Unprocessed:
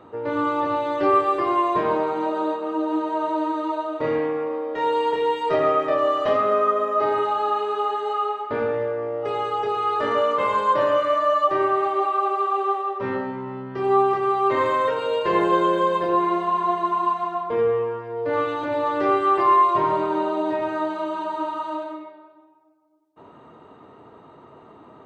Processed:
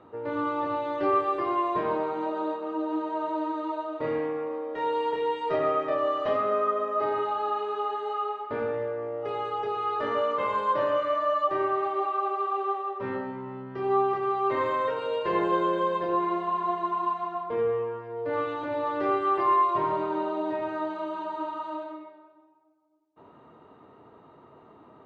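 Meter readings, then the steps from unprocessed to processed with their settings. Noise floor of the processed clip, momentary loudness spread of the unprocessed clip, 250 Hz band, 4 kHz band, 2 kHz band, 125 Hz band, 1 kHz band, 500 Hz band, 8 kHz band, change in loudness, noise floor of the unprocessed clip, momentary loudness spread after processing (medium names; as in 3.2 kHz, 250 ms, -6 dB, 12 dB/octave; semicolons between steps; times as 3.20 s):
-54 dBFS, 8 LU, -5.5 dB, -7.5 dB, -6.5 dB, -5.5 dB, -6.0 dB, -5.5 dB, no reading, -6.0 dB, -48 dBFS, 8 LU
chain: distance through air 87 m; trim -5.5 dB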